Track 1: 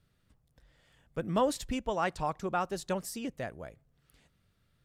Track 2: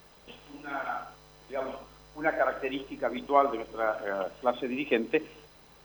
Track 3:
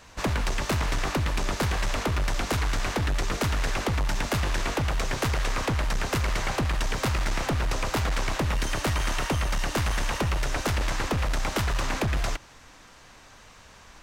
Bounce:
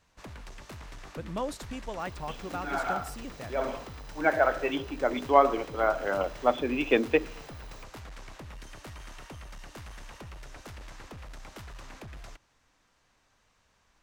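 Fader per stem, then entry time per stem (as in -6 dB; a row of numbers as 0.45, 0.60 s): -5.5, +3.0, -18.5 dB; 0.00, 2.00, 0.00 s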